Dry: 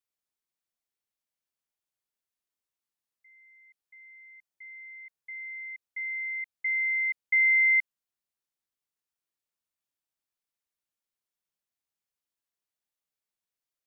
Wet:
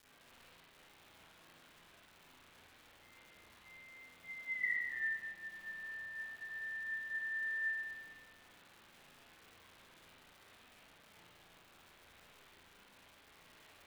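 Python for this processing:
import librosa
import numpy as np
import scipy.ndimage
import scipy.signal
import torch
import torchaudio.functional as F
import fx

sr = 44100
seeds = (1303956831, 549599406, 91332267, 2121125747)

y = fx.octave_mirror(x, sr, pivot_hz=2000.0)
y = fx.doppler_pass(y, sr, speed_mps=27, closest_m=2.8, pass_at_s=4.66)
y = fx.dmg_crackle(y, sr, seeds[0], per_s=510.0, level_db=-56.0)
y = fx.rev_spring(y, sr, rt60_s=1.3, pass_ms=(35, 47), chirp_ms=25, drr_db=-9.0)
y = F.gain(torch.from_numpy(y), 3.5).numpy()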